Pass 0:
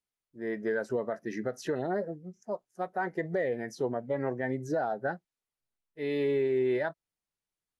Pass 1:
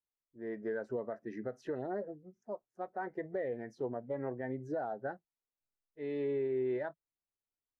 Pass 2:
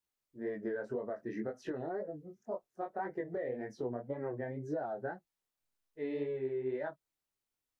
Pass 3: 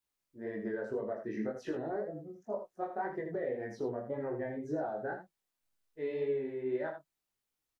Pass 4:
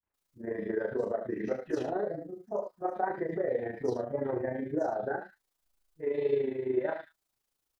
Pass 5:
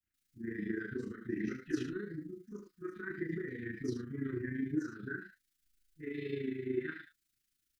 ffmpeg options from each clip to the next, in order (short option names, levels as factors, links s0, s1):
-af "lowpass=f=1200:p=1,equalizer=f=170:w=7.2:g=-12.5,volume=0.531"
-af "acompressor=threshold=0.0112:ratio=6,flanger=delay=19.5:depth=5.7:speed=1.9,volume=2.51"
-af "aecho=1:1:19|79:0.596|0.447"
-filter_complex "[0:a]acrossover=split=190|2200[s0][s1][s2];[s1]adelay=30[s3];[s2]adelay=140[s4];[s0][s3][s4]amix=inputs=3:normalize=0,tremolo=f=27:d=0.621,volume=2.51"
-af "asuperstop=centerf=700:order=8:qfactor=0.64,volume=1.12"